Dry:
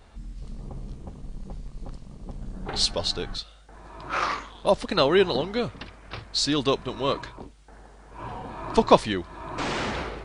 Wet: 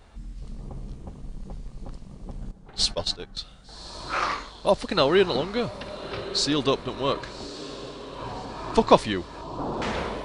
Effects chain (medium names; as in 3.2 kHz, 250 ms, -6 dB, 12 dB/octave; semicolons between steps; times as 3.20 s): 2.51–3.37 s: gate -27 dBFS, range -16 dB; 9.41–9.82 s: steep low-pass 1.1 kHz; echo that smears into a reverb 1151 ms, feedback 52%, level -14 dB